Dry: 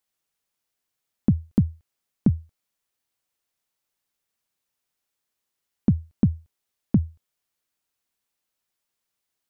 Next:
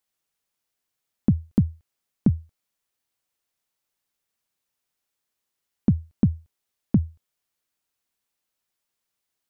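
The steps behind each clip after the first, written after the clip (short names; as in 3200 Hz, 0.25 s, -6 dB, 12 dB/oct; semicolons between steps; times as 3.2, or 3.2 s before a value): nothing audible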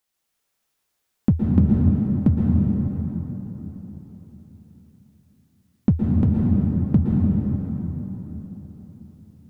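in parallel at -8.5 dB: hard clip -19.5 dBFS, distortion -7 dB; on the sum: plate-style reverb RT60 4.3 s, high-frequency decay 0.6×, pre-delay 0.105 s, DRR -3.5 dB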